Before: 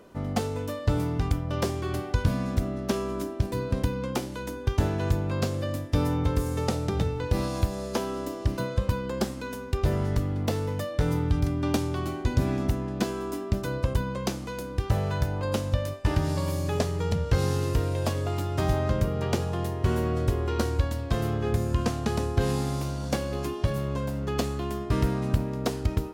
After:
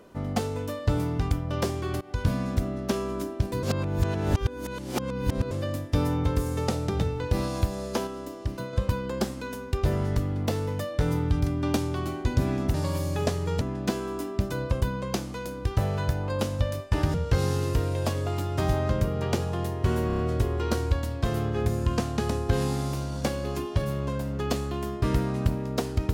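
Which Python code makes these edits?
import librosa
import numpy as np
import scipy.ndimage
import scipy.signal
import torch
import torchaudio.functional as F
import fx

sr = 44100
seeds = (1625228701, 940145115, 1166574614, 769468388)

y = fx.edit(x, sr, fx.fade_in_from(start_s=2.01, length_s=0.27, floor_db=-19.5),
    fx.reverse_span(start_s=3.63, length_s=1.88),
    fx.clip_gain(start_s=8.07, length_s=0.66, db=-4.5),
    fx.move(start_s=16.27, length_s=0.87, to_s=12.74),
    fx.stutter(start_s=20.07, slice_s=0.03, count=5), tone=tone)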